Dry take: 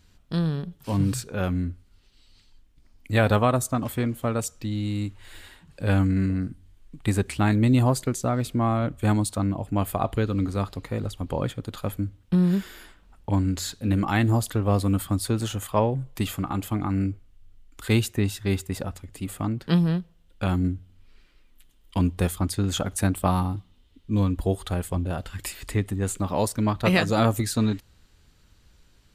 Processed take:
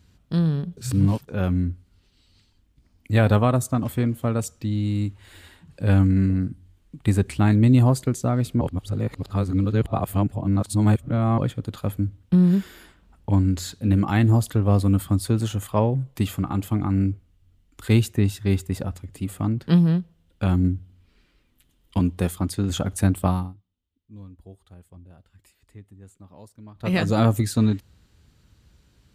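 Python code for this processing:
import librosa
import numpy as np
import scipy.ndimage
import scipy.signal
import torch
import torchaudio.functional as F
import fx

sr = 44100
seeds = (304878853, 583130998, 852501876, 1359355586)

y = fx.highpass(x, sr, hz=140.0, slope=6, at=(21.99, 22.7))
y = fx.edit(y, sr, fx.reverse_span(start_s=0.77, length_s=0.51),
    fx.reverse_span(start_s=8.61, length_s=2.77),
    fx.fade_down_up(start_s=23.24, length_s=3.81, db=-23.5, fade_s=0.3), tone=tone)
y = scipy.signal.sosfilt(scipy.signal.butter(2, 61.0, 'highpass', fs=sr, output='sos'), y)
y = fx.low_shelf(y, sr, hz=310.0, db=8.0)
y = y * 10.0 ** (-2.0 / 20.0)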